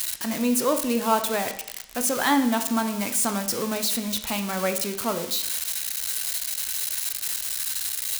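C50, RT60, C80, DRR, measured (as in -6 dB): 10.5 dB, 0.75 s, 13.5 dB, 7.0 dB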